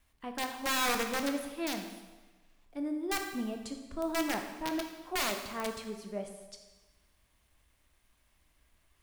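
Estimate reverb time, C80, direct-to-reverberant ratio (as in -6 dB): 1.2 s, 8.5 dB, 4.0 dB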